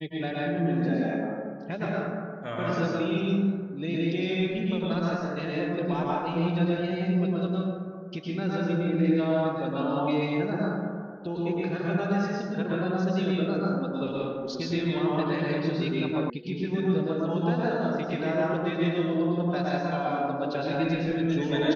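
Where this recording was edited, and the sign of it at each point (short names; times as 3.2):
16.3 sound cut off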